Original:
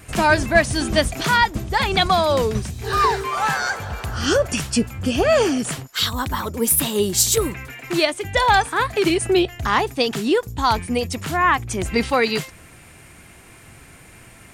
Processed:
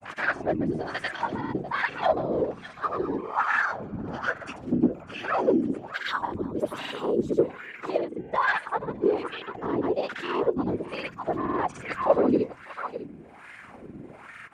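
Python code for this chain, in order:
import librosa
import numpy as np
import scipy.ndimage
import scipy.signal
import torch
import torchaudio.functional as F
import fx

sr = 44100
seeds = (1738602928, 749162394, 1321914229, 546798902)

y = fx.low_shelf(x, sr, hz=260.0, db=11.5)
y = fx.hum_notches(y, sr, base_hz=50, count=8)
y = fx.whisperise(y, sr, seeds[0])
y = np.clip(y, -10.0 ** (-10.5 / 20.0), 10.0 ** (-10.5 / 20.0))
y = fx.granulator(y, sr, seeds[1], grain_ms=100.0, per_s=20.0, spray_ms=100.0, spread_st=0)
y = y + 10.0 ** (-15.0 / 20.0) * np.pad(y, (int(601 * sr / 1000.0), 0))[:len(y)]
y = fx.wah_lfo(y, sr, hz=1.2, low_hz=290.0, high_hz=1800.0, q=2.7)
y = fx.rider(y, sr, range_db=10, speed_s=2.0)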